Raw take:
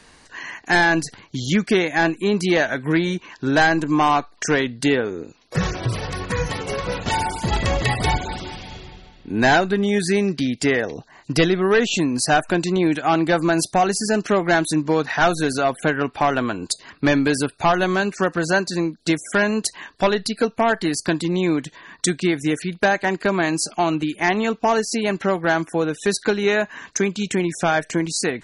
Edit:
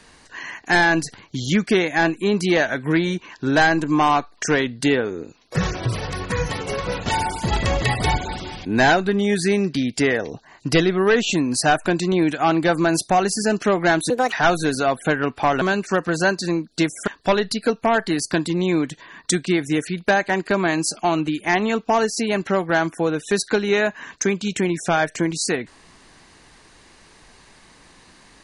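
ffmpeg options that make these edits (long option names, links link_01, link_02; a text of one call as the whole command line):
ffmpeg -i in.wav -filter_complex "[0:a]asplit=6[link_01][link_02][link_03][link_04][link_05][link_06];[link_01]atrim=end=8.652[link_07];[link_02]atrim=start=9.288:end=14.744[link_08];[link_03]atrim=start=14.74:end=15.1,asetpts=PTS-STARTPTS,asetrate=71001,aresample=44100[link_09];[link_04]atrim=start=15.096:end=16.392[link_10];[link_05]atrim=start=17.898:end=19.362[link_11];[link_06]atrim=start=19.818[link_12];[link_07][link_08]acrossfade=duration=0.004:curve1=hsin:curve2=hsin[link_13];[link_13][link_09]acrossfade=duration=0.004:curve1=hsin:curve2=hsin[link_14];[link_14][link_10]acrossfade=duration=0.004:curve1=hsin:curve2=hsin[link_15];[link_15][link_11]acrossfade=duration=0.004:curve1=hsin:curve2=hsin[link_16];[link_16][link_12]acrossfade=duration=0.004:curve1=hsin:curve2=hsin" out.wav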